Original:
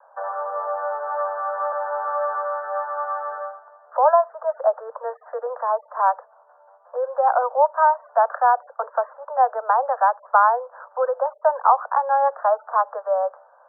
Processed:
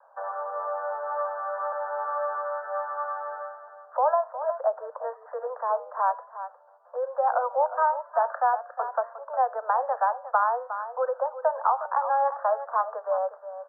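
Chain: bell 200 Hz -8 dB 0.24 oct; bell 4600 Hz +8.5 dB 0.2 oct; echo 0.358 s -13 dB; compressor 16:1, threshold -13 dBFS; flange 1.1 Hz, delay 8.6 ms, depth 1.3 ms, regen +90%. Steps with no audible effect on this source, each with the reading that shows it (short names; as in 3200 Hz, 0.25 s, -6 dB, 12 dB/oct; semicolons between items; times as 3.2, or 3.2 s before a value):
bell 200 Hz: input band starts at 430 Hz; bell 4600 Hz: input band ends at 1800 Hz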